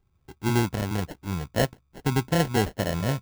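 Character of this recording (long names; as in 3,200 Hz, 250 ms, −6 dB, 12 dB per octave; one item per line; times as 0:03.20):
phaser sweep stages 6, 0.82 Hz, lowest notch 740–4,300 Hz
aliases and images of a low sample rate 1,200 Hz, jitter 0%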